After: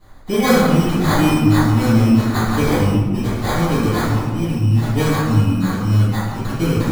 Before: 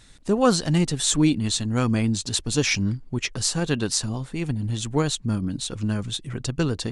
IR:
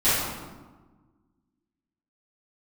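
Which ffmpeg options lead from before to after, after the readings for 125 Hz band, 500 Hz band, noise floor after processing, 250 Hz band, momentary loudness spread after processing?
+10.0 dB, +6.5 dB, -26 dBFS, +8.0 dB, 6 LU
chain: -filter_complex "[0:a]acrusher=samples=16:mix=1:aa=0.000001[a];[1:a]atrim=start_sample=2205[b];[a][b]afir=irnorm=-1:irlink=0,volume=-11.5dB"

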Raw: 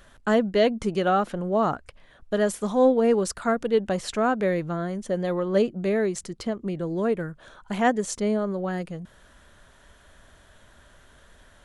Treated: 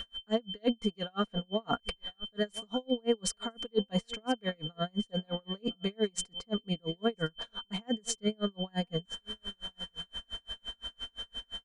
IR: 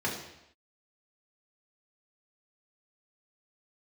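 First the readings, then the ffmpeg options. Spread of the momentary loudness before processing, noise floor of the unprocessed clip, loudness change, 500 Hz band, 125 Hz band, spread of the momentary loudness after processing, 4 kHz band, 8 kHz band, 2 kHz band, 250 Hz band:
9 LU, -55 dBFS, -10.0 dB, -11.5 dB, -6.5 dB, 9 LU, +6.0 dB, -3.0 dB, -11.0 dB, -8.0 dB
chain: -af "areverse,acompressor=threshold=-33dB:ratio=6,areverse,lowpass=f=9.9k:w=0.5412,lowpass=f=9.9k:w=1.3066,acontrast=55,aecho=1:1:4.3:0.71,aeval=exprs='val(0)+0.02*sin(2*PI*3100*n/s)':c=same,aecho=1:1:1008:0.1,aeval=exprs='val(0)*pow(10,-39*(0.5-0.5*cos(2*PI*5.8*n/s))/20)':c=same"

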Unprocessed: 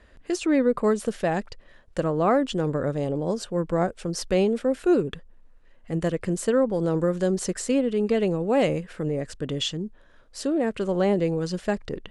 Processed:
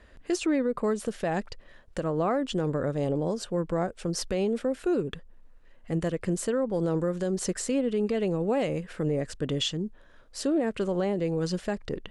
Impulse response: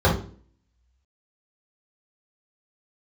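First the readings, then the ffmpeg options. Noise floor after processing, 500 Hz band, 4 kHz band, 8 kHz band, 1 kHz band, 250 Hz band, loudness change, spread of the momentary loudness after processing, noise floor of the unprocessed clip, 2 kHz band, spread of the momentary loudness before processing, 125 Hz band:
-54 dBFS, -4.0 dB, -1.5 dB, -1.0 dB, -5.0 dB, -3.5 dB, -4.0 dB, 6 LU, -53 dBFS, -4.0 dB, 9 LU, -2.5 dB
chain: -af "alimiter=limit=-18.5dB:level=0:latency=1:release=243"

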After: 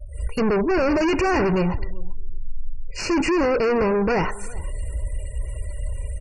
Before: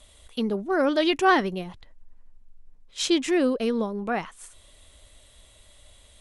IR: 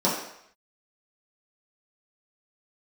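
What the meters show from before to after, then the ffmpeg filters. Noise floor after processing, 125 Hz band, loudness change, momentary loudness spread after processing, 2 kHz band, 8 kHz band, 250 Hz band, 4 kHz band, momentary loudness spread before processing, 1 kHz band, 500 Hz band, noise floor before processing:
-34 dBFS, +13.5 dB, +2.0 dB, 19 LU, +2.0 dB, 0.0 dB, +3.5 dB, -4.0 dB, 16 LU, +1.5 dB, +5.0 dB, -55 dBFS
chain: -filter_complex "[0:a]asplit=2[a][b];[1:a]atrim=start_sample=2205,asetrate=61740,aresample=44100[c];[b][c]afir=irnorm=-1:irlink=0,volume=-28dB[d];[a][d]amix=inputs=2:normalize=0,asoftclip=type=hard:threshold=-25.5dB,equalizer=f=68:w=0.34:g=9.5,aecho=1:1:2.1:0.48,asoftclip=type=tanh:threshold=-33.5dB,dynaudnorm=f=100:g=3:m=8.5dB,aecho=1:1:389|778:0.0891|0.0169,acrossover=split=4800[e][f];[f]acompressor=threshold=-46dB:ratio=4:attack=1:release=60[g];[e][g]amix=inputs=2:normalize=0,asuperstop=centerf=3500:order=20:qfactor=2.5,afftfilt=real='re*gte(hypot(re,im),0.00562)':imag='im*gte(hypot(re,im),0.00562)':win_size=1024:overlap=0.75,lowshelf=f=120:g=4.5,volume=6.5dB"

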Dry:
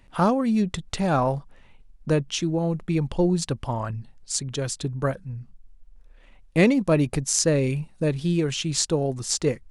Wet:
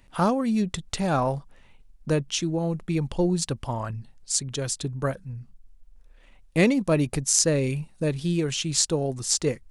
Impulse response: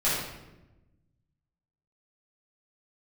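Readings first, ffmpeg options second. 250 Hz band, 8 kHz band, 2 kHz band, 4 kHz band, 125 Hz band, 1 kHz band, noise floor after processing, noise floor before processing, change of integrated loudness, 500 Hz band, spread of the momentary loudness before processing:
-2.0 dB, +2.0 dB, -1.0 dB, +0.5 dB, -2.0 dB, -2.0 dB, -55 dBFS, -53 dBFS, -1.0 dB, -2.0 dB, 9 LU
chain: -af "highshelf=f=4.7k:g=6,volume=-2dB"

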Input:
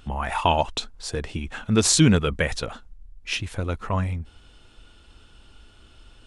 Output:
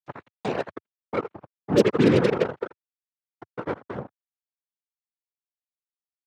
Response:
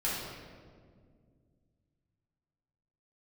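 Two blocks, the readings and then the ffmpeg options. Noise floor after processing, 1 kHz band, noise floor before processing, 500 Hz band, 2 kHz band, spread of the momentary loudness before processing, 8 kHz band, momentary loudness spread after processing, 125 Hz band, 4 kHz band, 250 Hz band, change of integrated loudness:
under -85 dBFS, -7.5 dB, -53 dBFS, +4.0 dB, -5.0 dB, 16 LU, under -20 dB, 19 LU, -6.5 dB, -11.5 dB, -1.0 dB, -0.5 dB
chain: -filter_complex "[0:a]lowpass=f=420:t=q:w=5.1,asplit=2[a][b];[b]aecho=0:1:82|164|246|328|410|492:0.473|0.237|0.118|0.0591|0.0296|0.0148[c];[a][c]amix=inputs=2:normalize=0,acrusher=bits=2:mix=0:aa=0.5,afftfilt=real='hypot(re,im)*cos(2*PI*random(0))':imag='hypot(re,im)*sin(2*PI*random(1))':win_size=512:overlap=0.75,acompressor=mode=upward:threshold=-28dB:ratio=2.5,highpass=f=100:w=0.5412,highpass=f=100:w=1.3066"

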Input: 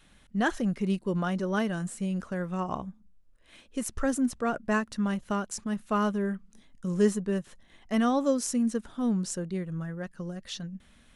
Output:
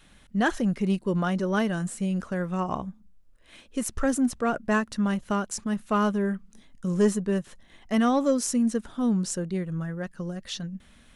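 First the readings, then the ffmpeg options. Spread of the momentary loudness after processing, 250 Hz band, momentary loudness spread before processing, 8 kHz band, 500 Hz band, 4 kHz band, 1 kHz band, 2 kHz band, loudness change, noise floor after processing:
10 LU, +3.0 dB, 12 LU, +3.5 dB, +2.5 dB, +3.0 dB, +3.0 dB, +3.0 dB, +3.0 dB, -56 dBFS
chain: -af "asoftclip=type=tanh:threshold=-15.5dB,volume=3.5dB"

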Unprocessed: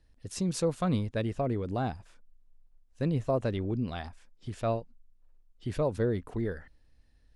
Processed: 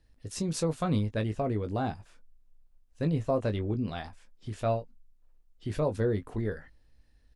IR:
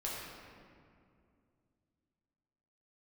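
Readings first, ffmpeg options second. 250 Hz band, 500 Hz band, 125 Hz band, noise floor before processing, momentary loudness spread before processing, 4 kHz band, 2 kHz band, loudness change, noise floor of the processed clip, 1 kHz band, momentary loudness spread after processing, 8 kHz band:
0.0 dB, +0.5 dB, +1.0 dB, -63 dBFS, 13 LU, +0.5 dB, +0.5 dB, +0.5 dB, -63 dBFS, +1.0 dB, 13 LU, n/a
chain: -filter_complex "[0:a]asplit=2[a][b];[b]adelay=19,volume=-8dB[c];[a][c]amix=inputs=2:normalize=0"

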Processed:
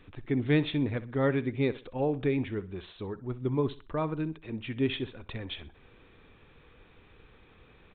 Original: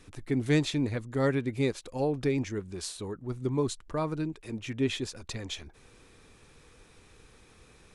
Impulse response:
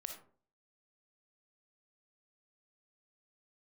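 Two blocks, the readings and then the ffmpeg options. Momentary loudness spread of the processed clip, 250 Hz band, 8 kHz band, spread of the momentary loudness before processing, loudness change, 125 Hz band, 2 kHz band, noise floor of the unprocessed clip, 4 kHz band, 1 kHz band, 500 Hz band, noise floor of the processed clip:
13 LU, 0.0 dB, under -35 dB, 11 LU, 0.0 dB, 0.0 dB, 0.0 dB, -58 dBFS, -2.5 dB, 0.0 dB, 0.0 dB, -59 dBFS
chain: -af "aecho=1:1:63|126|189:0.141|0.0424|0.0127,aresample=8000,aresample=44100"

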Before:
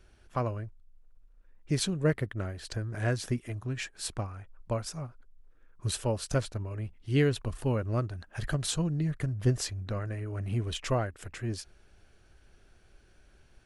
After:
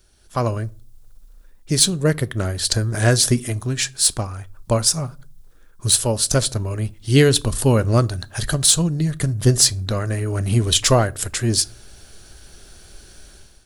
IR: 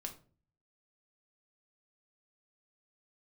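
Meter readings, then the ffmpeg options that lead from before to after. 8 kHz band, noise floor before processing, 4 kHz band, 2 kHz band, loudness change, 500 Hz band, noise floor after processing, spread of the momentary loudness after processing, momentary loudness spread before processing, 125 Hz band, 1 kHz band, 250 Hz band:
+21.5 dB, -60 dBFS, +18.5 dB, +11.5 dB, +14.0 dB, +11.5 dB, -48 dBFS, 11 LU, 10 LU, +11.0 dB, +11.5 dB, +11.0 dB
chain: -filter_complex "[0:a]aexciter=amount=1.7:drive=9.6:freq=3.5k,dynaudnorm=f=110:g=7:m=14.5dB,asplit=2[a][b];[1:a]atrim=start_sample=2205[c];[b][c]afir=irnorm=-1:irlink=0,volume=-9dB[d];[a][d]amix=inputs=2:normalize=0,volume=-2dB"

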